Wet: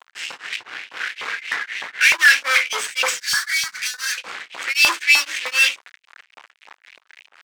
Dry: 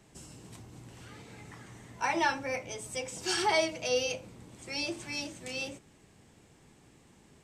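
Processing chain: 0.63–1.19 s: self-modulated delay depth 0.38 ms; elliptic band-stop 530–1500 Hz, stop band 40 dB; level-controlled noise filter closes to 2.4 kHz, open at -27.5 dBFS; 4.73–5.25 s: expander -42 dBFS; fuzz box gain 47 dB, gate -56 dBFS; treble shelf 9.7 kHz -7 dB; LFO high-pass saw up 3.3 Hz 940–2900 Hz; 3.20–4.18 s: FFT filter 210 Hz 0 dB, 370 Hz -30 dB, 1.7 kHz -1 dB, 2.8 kHz -18 dB, 4.2 kHz -4 dB; tremolo of two beating tones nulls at 3.9 Hz

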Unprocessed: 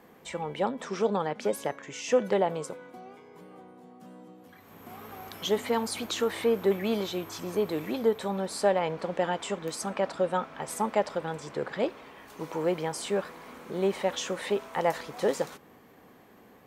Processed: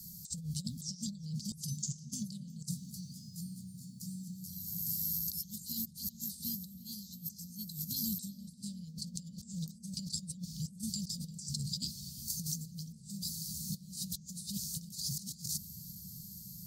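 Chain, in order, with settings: Chebyshev band-stop 180–4500 Hz, order 5; treble shelf 2.5 kHz +8.5 dB; hum notches 50/100/150 Hz; compressor with a negative ratio -48 dBFS, ratio -0.5; filtered feedback delay 347 ms, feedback 85%, low-pass 2.2 kHz, level -14 dB; trim +6.5 dB

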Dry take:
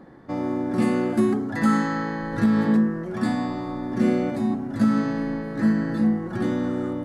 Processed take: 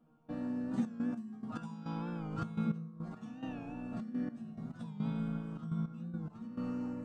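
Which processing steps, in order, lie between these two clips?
formant shift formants -5 st; chord resonator D#3 fifth, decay 0.34 s; dynamic bell 210 Hz, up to +6 dB, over -44 dBFS, Q 1.4; compression 3:1, threshold -38 dBFS, peak gain reduction 9 dB; trance gate "..xxxx.x..x" 105 bpm -12 dB; warped record 45 rpm, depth 100 cents; trim +7.5 dB

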